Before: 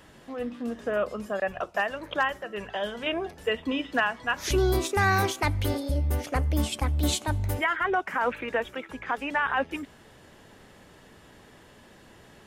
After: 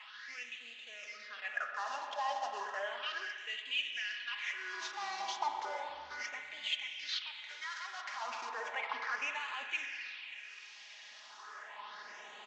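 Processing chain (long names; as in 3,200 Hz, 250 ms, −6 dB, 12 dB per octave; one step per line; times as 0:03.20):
variable-slope delta modulation 32 kbit/s
comb filter 4.8 ms, depth 50%
reversed playback
downward compressor, threshold −33 dBFS, peak gain reduction 13.5 dB
reversed playback
brickwall limiter −30.5 dBFS, peak gain reduction 7.5 dB
all-pass phaser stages 6, 0.34 Hz, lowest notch 100–1,500 Hz
spring reverb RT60 3.3 s, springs 40/55 ms, chirp 55 ms, DRR 4 dB
auto-filter high-pass sine 0.31 Hz 900–2,400 Hz
level +4.5 dB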